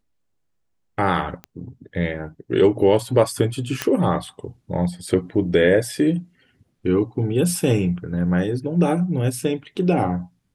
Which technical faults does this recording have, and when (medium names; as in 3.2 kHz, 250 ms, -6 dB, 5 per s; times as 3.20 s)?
1.44 s: pop -19 dBFS
3.82 s: pop -6 dBFS